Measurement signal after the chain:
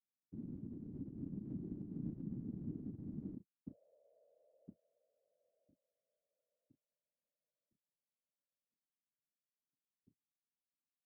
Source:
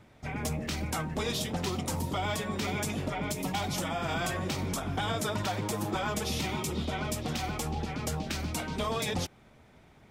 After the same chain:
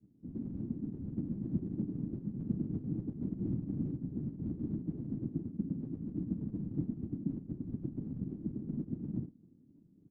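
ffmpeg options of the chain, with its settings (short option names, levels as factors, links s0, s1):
-filter_complex "[0:a]asuperpass=centerf=210:order=8:qfactor=2.2,asplit=2[s0][s1];[s1]adelay=32,volume=0.376[s2];[s0][s2]amix=inputs=2:normalize=0,afftfilt=real='hypot(re,im)*cos(2*PI*random(0))':imag='hypot(re,im)*sin(2*PI*random(1))':win_size=512:overlap=0.75,volume=2.51"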